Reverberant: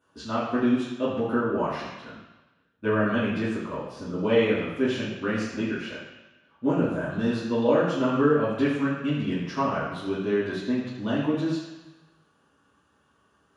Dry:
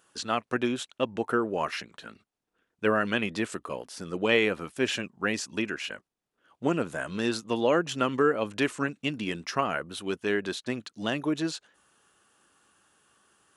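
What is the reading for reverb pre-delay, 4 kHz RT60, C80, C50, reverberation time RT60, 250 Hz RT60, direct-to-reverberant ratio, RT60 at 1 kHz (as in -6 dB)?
3 ms, 1.2 s, 4.0 dB, 2.0 dB, 1.1 s, 0.95 s, -10.5 dB, 1.1 s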